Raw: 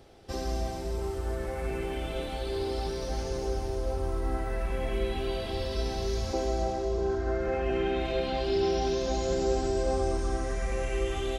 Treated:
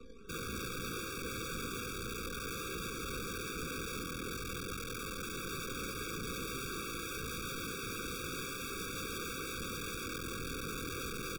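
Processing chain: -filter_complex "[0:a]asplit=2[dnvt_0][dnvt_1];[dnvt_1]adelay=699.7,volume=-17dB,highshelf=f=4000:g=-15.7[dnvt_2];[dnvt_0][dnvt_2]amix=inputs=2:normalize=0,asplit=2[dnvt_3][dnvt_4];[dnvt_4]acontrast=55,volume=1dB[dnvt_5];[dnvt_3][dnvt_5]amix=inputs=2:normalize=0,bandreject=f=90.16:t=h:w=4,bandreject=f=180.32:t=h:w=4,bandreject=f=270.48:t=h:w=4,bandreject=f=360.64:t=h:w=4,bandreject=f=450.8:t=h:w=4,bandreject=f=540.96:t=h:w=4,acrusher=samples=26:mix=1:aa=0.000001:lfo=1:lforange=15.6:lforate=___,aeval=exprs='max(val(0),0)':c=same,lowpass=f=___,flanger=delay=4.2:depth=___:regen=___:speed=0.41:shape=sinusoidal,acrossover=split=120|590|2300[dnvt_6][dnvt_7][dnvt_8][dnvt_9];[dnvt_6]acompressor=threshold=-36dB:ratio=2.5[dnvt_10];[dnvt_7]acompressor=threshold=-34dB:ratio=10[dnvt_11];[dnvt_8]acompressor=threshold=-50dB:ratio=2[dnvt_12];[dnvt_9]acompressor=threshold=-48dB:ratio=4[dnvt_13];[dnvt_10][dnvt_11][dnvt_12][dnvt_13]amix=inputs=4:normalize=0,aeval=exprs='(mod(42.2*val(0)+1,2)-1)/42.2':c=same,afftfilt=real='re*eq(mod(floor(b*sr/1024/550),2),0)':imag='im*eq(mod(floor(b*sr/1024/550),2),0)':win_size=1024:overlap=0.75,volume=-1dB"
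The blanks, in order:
2.7, 6600, 3.2, 2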